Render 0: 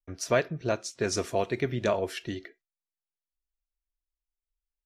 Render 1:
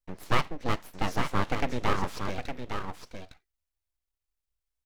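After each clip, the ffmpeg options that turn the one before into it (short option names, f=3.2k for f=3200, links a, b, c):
-filter_complex "[0:a]acrossover=split=3100[a][b];[b]acompressor=threshold=-49dB:ratio=4:attack=1:release=60[c];[a][c]amix=inputs=2:normalize=0,aecho=1:1:860:0.447,aeval=exprs='abs(val(0))':c=same,volume=2.5dB"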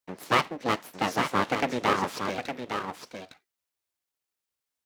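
-af "highpass=200,volume=4.5dB"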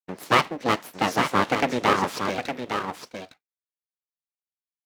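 -af "agate=range=-33dB:threshold=-42dB:ratio=3:detection=peak,volume=4dB"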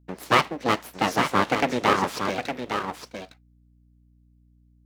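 -af "aeval=exprs='val(0)+0.00141*(sin(2*PI*60*n/s)+sin(2*PI*2*60*n/s)/2+sin(2*PI*3*60*n/s)/3+sin(2*PI*4*60*n/s)/4+sin(2*PI*5*60*n/s)/5)':c=same"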